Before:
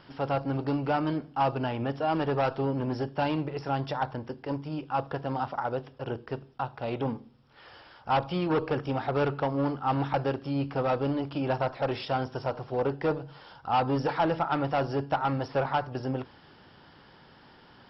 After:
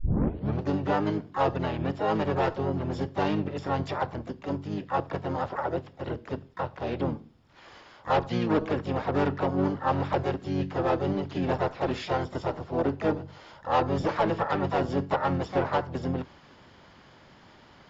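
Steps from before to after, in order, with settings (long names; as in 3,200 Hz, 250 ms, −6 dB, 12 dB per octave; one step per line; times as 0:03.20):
turntable start at the beginning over 0.62 s
pitch-shifted copies added −7 semitones −2 dB, +5 semitones −7 dB
level −1.5 dB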